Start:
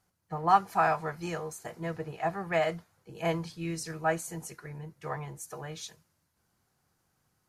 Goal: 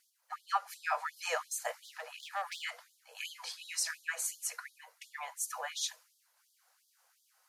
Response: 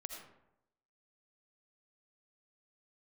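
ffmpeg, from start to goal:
-filter_complex "[0:a]lowshelf=frequency=310:gain=-11.5,acompressor=threshold=-33dB:ratio=3,asettb=1/sr,asplit=3[link_01][link_02][link_03];[link_01]atrim=end=1.844[link_04];[link_02]atrim=start=1.84:end=2.62,asetpts=PTS-STARTPTS,afade=type=in:duration=0.004:curve=qsin,afade=type=out:start_time=0.776:duration=0.004:curve=qsin,volume=35dB,asoftclip=hard,volume=-35dB[link_05];[link_03]atrim=start=2.616[link_06];[link_04][link_05]acrossfade=duration=0.004:curve1=hsin:curve2=qsin[link_07];[link_07][link_06]acrossfade=duration=0.004:curve1=qsin:curve2=hsin,afftfilt=real='re*gte(b*sr/1024,450*pow(3200/450,0.5+0.5*sin(2*PI*2.8*pts/sr)))':imag='im*gte(b*sr/1024,450*pow(3200/450,0.5+0.5*sin(2*PI*2.8*pts/sr)))':win_size=1024:overlap=0.75,volume=7dB"

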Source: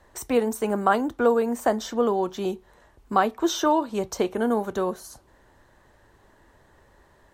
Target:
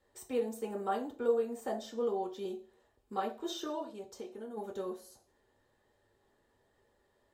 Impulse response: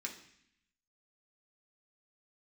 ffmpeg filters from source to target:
-filter_complex "[0:a]asplit=3[link_01][link_02][link_03];[link_01]afade=type=out:start_time=3.91:duration=0.02[link_04];[link_02]acompressor=threshold=-33dB:ratio=2.5,afade=type=in:start_time=3.91:duration=0.02,afade=type=out:start_time=4.56:duration=0.02[link_05];[link_03]afade=type=in:start_time=4.56:duration=0.02[link_06];[link_04][link_05][link_06]amix=inputs=3:normalize=0[link_07];[1:a]atrim=start_sample=2205,asetrate=88200,aresample=44100[link_08];[link_07][link_08]afir=irnorm=-1:irlink=0,volume=-6.5dB"

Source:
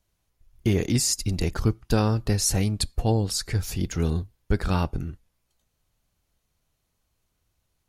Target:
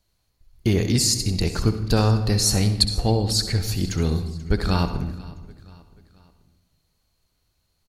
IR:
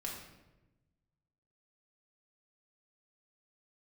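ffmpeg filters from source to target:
-filter_complex "[0:a]equalizer=frequency=4300:width_type=o:width=0.2:gain=11.5,aecho=1:1:484|968|1452:0.0891|0.0428|0.0205,asplit=2[link_01][link_02];[1:a]atrim=start_sample=2205,adelay=64[link_03];[link_02][link_03]afir=irnorm=-1:irlink=0,volume=-9dB[link_04];[link_01][link_04]amix=inputs=2:normalize=0,volume=2dB"

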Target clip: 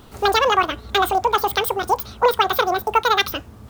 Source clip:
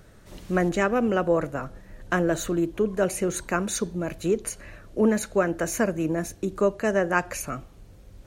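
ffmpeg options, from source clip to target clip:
ffmpeg -i in.wav -af "asetrate=98784,aresample=44100,volume=6dB" out.wav

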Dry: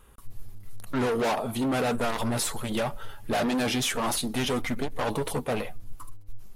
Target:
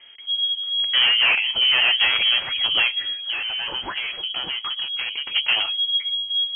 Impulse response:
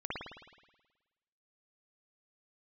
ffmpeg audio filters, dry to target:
-filter_complex "[0:a]lowpass=frequency=2800:width_type=q:width=0.5098,lowpass=frequency=2800:width_type=q:width=0.6013,lowpass=frequency=2800:width_type=q:width=0.9,lowpass=frequency=2800:width_type=q:width=2.563,afreqshift=-3300,asettb=1/sr,asplit=3[link_01][link_02][link_03];[link_01]atrim=end=3.044[link_04];[link_02]atrim=start=3.04:end=5.36,asetpts=PTS-STARTPTS,afade=type=in:duration=0.004:curve=qsin,afade=type=out:start_time=2.316:duration=0.004:curve=qsin,acompressor=threshold=-33dB:ratio=6[link_05];[link_03]atrim=start=5.356[link_06];[link_04][link_05]acrossfade=duration=0.004:curve1=hsin:curve2=qsin[link_07];[link_07][link_06]acrossfade=duration=0.004:curve1=qsin:curve2=hsin,volume=8dB"

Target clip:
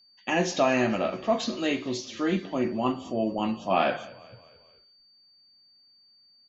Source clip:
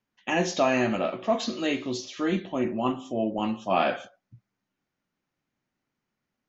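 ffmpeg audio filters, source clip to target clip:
ffmpeg -i in.wav -filter_complex "[0:a]asplit=5[link_01][link_02][link_03][link_04][link_05];[link_02]adelay=220,afreqshift=-32,volume=-21dB[link_06];[link_03]adelay=440,afreqshift=-64,volume=-27dB[link_07];[link_04]adelay=660,afreqshift=-96,volume=-33dB[link_08];[link_05]adelay=880,afreqshift=-128,volume=-39.1dB[link_09];[link_01][link_06][link_07][link_08][link_09]amix=inputs=5:normalize=0,aeval=exprs='val(0)+0.00141*sin(2*PI*4600*n/s)':channel_layout=same" out.wav

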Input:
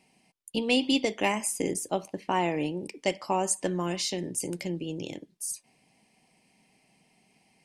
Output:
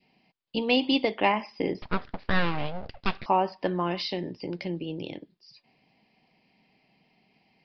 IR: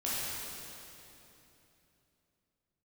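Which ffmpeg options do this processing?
-filter_complex "[0:a]adynamicequalizer=threshold=0.01:dfrequency=980:dqfactor=0.93:tfrequency=980:tqfactor=0.93:attack=5:release=100:ratio=0.375:range=3:mode=boostabove:tftype=bell,asettb=1/sr,asplit=3[link_01][link_02][link_03];[link_01]atrim=end=1.824[link_04];[link_02]atrim=start=1.82:end=3.26,asetpts=PTS-STARTPTS,afade=type=in:duration=0.004:curve=qsin,afade=type=out:start_time=1.436:duration=0.004:curve=qsin,aeval=exprs='abs(val(0))':channel_layout=same[link_05];[link_03]atrim=start=3.256[link_06];[link_04][link_05]acrossfade=duration=0.004:curve1=hsin:curve2=qsin[link_07];[link_07][link_06]acrossfade=duration=0.004:curve1=qsin:curve2=hsin,aresample=11025,aresample=44100"

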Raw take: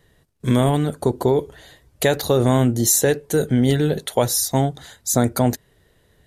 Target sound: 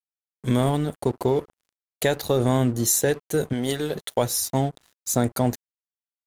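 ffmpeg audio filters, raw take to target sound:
ffmpeg -i in.wav -filter_complex "[0:a]asettb=1/sr,asplit=3[link_01][link_02][link_03];[link_01]atrim=end=3.534[link_04];[link_02]atrim=start=3.53:end=3.95,asetpts=PTS-STARTPTS,afade=type=in:duration=0.004:curve=qsin,afade=type=out:start_time=0.416:duration=0.004:curve=qsin,bass=frequency=250:gain=-10,treble=frequency=4000:gain=6[link_05];[link_03]atrim=start=3.946[link_06];[link_04][link_05]acrossfade=duration=0.004:curve1=hsin:curve2=qsin[link_07];[link_07][link_06]acrossfade=duration=0.004:curve1=qsin:curve2=hsin,aeval=exprs='sgn(val(0))*max(abs(val(0))-0.015,0)':channel_layout=same,volume=-3.5dB" out.wav

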